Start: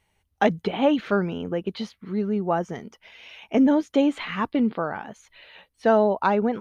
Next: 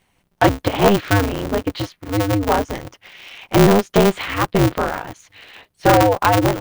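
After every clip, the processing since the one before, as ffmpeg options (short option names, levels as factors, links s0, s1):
-af "aeval=exprs='clip(val(0),-1,0.188)':c=same,aeval=exprs='val(0)*sgn(sin(2*PI*100*n/s))':c=same,volume=2.11"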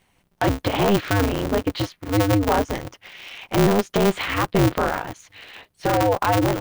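-af "alimiter=limit=0.282:level=0:latency=1:release=20"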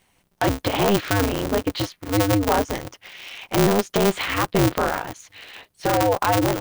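-af "bass=f=250:g=-2,treble=f=4000:g=4"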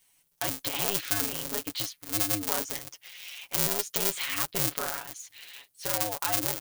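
-af "aecho=1:1:7.1:0.65,crystalizer=i=8:c=0,volume=0.126"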